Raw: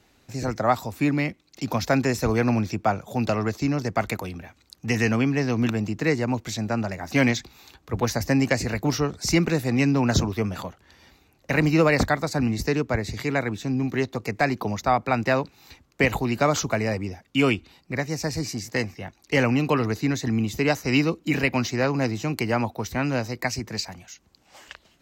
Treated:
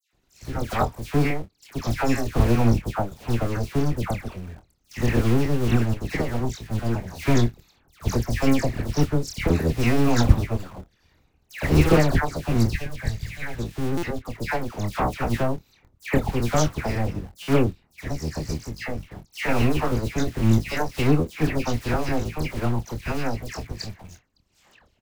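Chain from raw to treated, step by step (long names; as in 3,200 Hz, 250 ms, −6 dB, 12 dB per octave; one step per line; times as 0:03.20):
sub-harmonics by changed cycles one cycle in 2, muted
low-shelf EQ 170 Hz +11 dB
all-pass dispersion lows, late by 133 ms, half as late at 1,900 Hz
gain on a spectral selection 0:12.73–0:13.59, 200–1,500 Hz −9 dB
in parallel at −8.5 dB: bit-depth reduction 6 bits, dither none
on the sum: double-tracking delay 26 ms −9 dB
buffer that repeats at 0:13.97/0:17.42, samples 256, times 9
expander for the loud parts 1.5 to 1, over −26 dBFS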